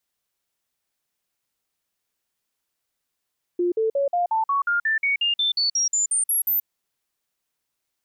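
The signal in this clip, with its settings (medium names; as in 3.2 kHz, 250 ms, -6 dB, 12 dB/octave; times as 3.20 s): stepped sine 352 Hz up, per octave 3, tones 17, 0.13 s, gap 0.05 s -18.5 dBFS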